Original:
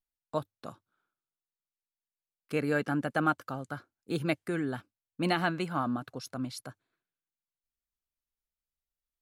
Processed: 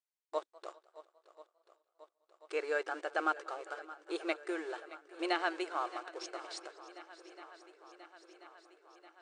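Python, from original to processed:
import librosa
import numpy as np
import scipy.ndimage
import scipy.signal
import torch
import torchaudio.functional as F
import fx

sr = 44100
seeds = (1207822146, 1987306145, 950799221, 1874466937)

p1 = fx.schmitt(x, sr, flips_db=-44.0)
p2 = x + (p1 * 10.0 ** (-11.5 / 20.0))
p3 = fx.brickwall_bandpass(p2, sr, low_hz=320.0, high_hz=9300.0)
p4 = fx.echo_swing(p3, sr, ms=1036, ratio=1.5, feedback_pct=64, wet_db=-17.5)
p5 = fx.echo_warbled(p4, sr, ms=200, feedback_pct=65, rate_hz=2.8, cents=117, wet_db=-22.5)
y = p5 * 10.0 ** (-4.0 / 20.0)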